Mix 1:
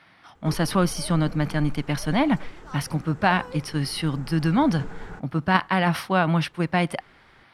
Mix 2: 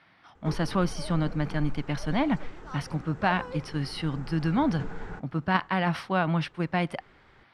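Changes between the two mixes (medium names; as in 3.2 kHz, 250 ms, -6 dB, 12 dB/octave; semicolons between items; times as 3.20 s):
speech -4.5 dB; master: add distance through air 64 m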